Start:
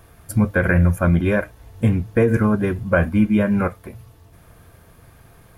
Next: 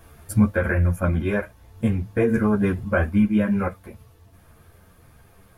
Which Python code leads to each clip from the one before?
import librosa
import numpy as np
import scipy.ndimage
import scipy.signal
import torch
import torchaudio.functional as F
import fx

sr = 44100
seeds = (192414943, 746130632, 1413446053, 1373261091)

y = fx.rider(x, sr, range_db=4, speed_s=0.5)
y = fx.ensemble(y, sr)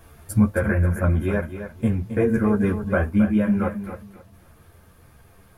y = fx.dynamic_eq(x, sr, hz=3100.0, q=0.71, threshold_db=-43.0, ratio=4.0, max_db=-4)
y = fx.echo_feedback(y, sr, ms=268, feedback_pct=22, wet_db=-10.0)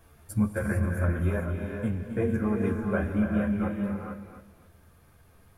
y = fx.rev_gated(x, sr, seeds[0], gate_ms=480, shape='rising', drr_db=3.0)
y = y * 10.0 ** (-8.0 / 20.0)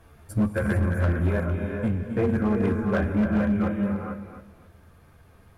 y = fx.high_shelf(x, sr, hz=5700.0, db=-9.0)
y = fx.clip_asym(y, sr, top_db=-23.5, bottom_db=-20.5)
y = y * 10.0 ** (4.5 / 20.0)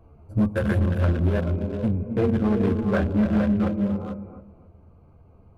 y = fx.wiener(x, sr, points=25)
y = y * 10.0 ** (2.0 / 20.0)